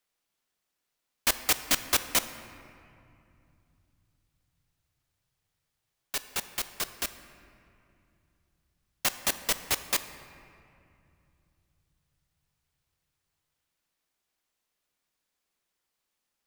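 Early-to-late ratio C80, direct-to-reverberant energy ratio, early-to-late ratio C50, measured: 12.5 dB, 10.5 dB, 11.5 dB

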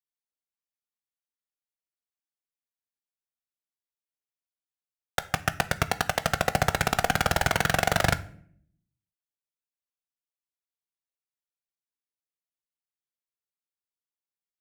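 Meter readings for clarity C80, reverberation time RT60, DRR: 22.0 dB, 0.60 s, 11.0 dB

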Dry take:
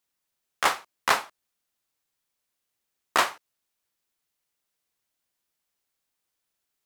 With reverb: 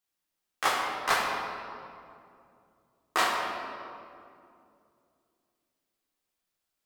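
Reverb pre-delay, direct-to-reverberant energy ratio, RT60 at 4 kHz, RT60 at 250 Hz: 3 ms, −4.0 dB, 1.5 s, 3.3 s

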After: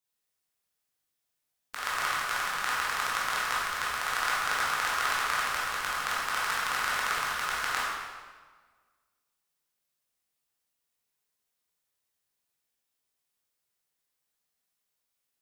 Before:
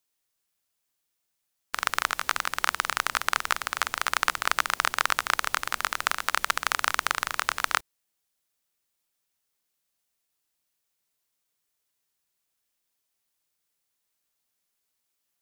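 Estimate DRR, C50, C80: −8.0 dB, −2.5 dB, 1.0 dB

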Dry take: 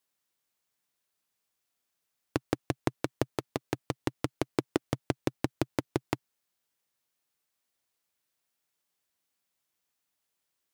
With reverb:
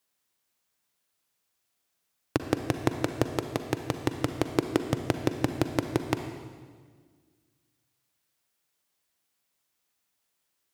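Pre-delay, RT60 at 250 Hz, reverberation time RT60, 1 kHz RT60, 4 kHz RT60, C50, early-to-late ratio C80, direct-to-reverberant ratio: 38 ms, 2.0 s, 1.6 s, 1.5 s, 1.5 s, 8.0 dB, 9.5 dB, 7.5 dB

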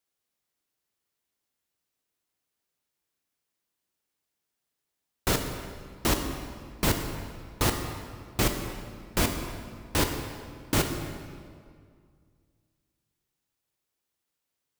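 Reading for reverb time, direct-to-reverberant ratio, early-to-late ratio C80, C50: 2.1 s, 4.5 dB, 7.0 dB, 6.0 dB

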